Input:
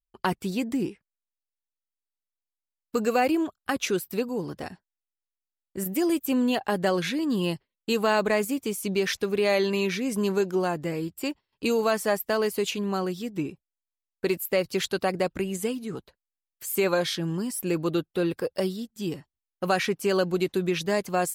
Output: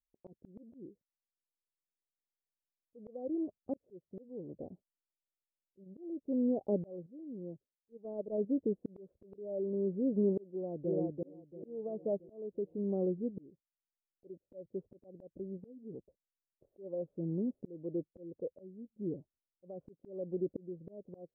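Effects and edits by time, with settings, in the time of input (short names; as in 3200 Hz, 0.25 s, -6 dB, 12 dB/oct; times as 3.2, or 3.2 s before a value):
7.06–8.38 gate -23 dBFS, range -12 dB
10.49–11.09 echo throw 0.34 s, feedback 50%, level -5.5 dB
whole clip: elliptic low-pass 570 Hz, stop band 70 dB; low shelf 190 Hz -8.5 dB; auto swell 0.727 s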